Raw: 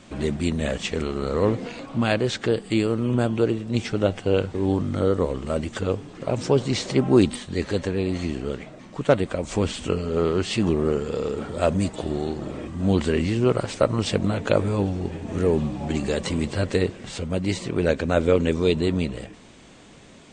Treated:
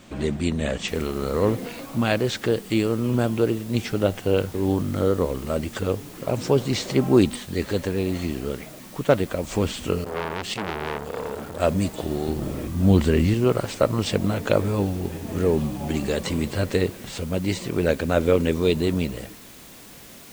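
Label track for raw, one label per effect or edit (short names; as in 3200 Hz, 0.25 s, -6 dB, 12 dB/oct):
0.880000	0.880000	noise floor step -67 dB -47 dB
10.040000	11.600000	core saturation saturates under 1900 Hz
12.280000	13.340000	low shelf 190 Hz +8 dB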